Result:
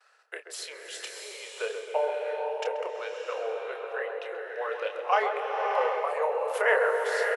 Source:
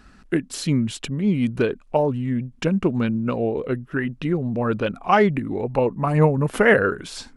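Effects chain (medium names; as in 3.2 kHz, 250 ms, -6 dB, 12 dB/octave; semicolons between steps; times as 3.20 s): gate with hold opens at -41 dBFS; steep high-pass 450 Hz 72 dB/octave; doubling 29 ms -8 dB; filtered feedback delay 132 ms, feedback 66%, low-pass 890 Hz, level -4.5 dB; swelling reverb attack 680 ms, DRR 1.5 dB; trim -7.5 dB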